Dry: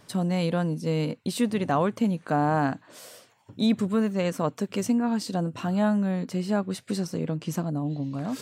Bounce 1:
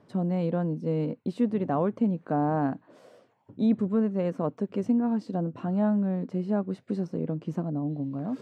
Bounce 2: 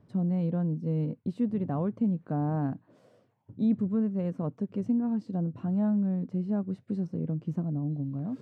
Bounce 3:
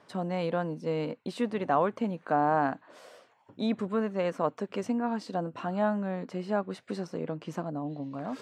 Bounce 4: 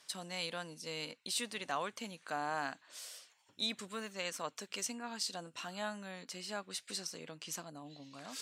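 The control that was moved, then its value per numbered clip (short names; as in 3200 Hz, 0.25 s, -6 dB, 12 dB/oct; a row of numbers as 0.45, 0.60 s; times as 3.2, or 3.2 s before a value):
band-pass, frequency: 310, 110, 830, 5500 Hz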